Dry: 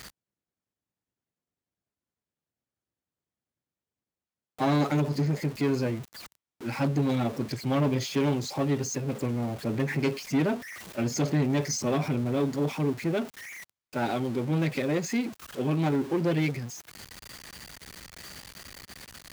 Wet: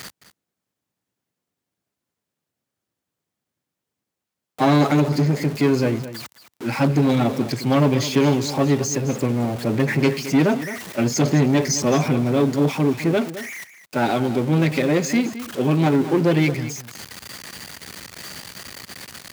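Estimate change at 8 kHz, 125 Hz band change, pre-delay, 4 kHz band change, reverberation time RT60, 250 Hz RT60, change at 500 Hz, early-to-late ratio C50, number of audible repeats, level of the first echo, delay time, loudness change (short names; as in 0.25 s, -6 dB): +8.5 dB, +7.5 dB, none, +8.5 dB, none, none, +8.5 dB, none, 1, -13.5 dB, 0.215 s, +8.5 dB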